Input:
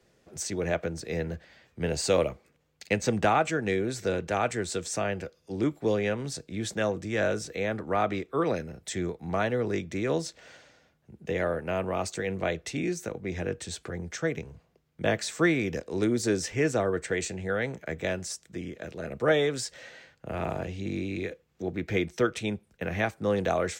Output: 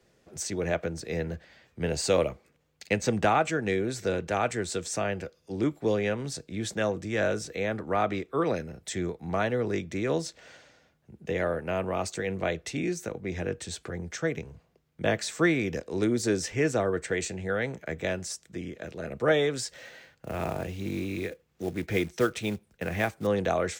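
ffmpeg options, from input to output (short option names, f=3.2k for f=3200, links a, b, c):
-filter_complex "[0:a]asettb=1/sr,asplit=3[a][b][c];[a]atrim=end=19.684[d];[b]atrim=start=19.68:end=23.27,asetpts=PTS-STARTPTS,afade=t=in:d=0.004:c=qsin,afade=t=out:st=3.586:d=0.004:c=qsin,acrusher=bits=5:mode=log:mix=0:aa=0.000001[e];[c]atrim=start=23.266[f];[d][e]acrossfade=d=0.004:c1=hsin:c2=qsin[g];[g][f]acrossfade=d=0.004:c1=qsin:c2=hsin"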